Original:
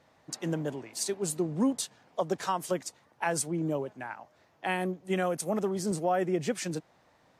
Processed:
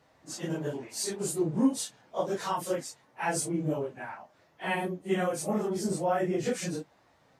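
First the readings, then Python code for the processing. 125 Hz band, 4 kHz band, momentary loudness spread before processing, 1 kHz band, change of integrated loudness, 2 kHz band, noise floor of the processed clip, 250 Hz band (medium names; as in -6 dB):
0.0 dB, 0.0 dB, 10 LU, 0.0 dB, +0.5 dB, 0.0 dB, -65 dBFS, +1.0 dB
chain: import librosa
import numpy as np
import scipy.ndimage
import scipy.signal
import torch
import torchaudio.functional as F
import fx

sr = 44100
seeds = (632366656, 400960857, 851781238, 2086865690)

y = fx.phase_scramble(x, sr, seeds[0], window_ms=100)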